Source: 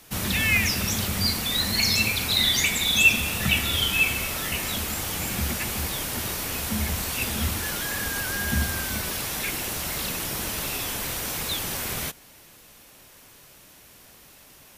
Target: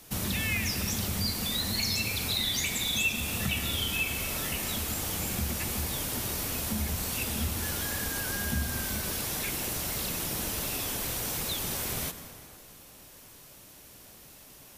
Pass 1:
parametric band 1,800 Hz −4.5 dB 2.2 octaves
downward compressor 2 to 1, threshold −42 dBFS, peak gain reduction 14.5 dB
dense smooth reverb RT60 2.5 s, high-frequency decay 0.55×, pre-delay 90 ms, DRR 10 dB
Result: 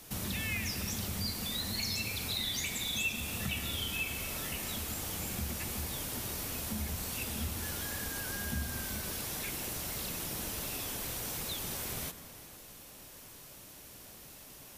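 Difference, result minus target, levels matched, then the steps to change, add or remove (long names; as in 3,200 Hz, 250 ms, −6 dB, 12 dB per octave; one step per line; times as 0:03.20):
downward compressor: peak gain reduction +5.5 dB
change: downward compressor 2 to 1, threshold −31 dBFS, peak gain reduction 9 dB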